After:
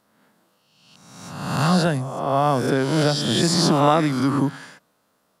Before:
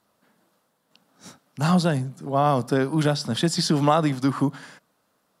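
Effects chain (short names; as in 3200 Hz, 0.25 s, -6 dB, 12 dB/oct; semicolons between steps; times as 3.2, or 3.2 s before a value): spectral swells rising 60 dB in 1.11 s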